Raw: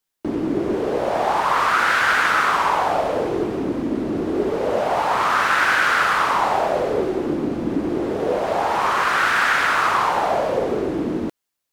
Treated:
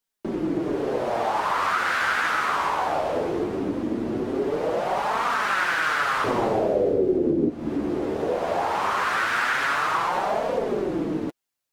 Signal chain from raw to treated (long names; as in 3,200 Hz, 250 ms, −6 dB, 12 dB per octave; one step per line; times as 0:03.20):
0:06.24–0:07.49: low shelf with overshoot 660 Hz +13 dB, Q 1.5
downward compressor 6 to 1, threshold −16 dBFS, peak gain reduction 13 dB
flanger 0.19 Hz, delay 4.1 ms, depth 10 ms, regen −18%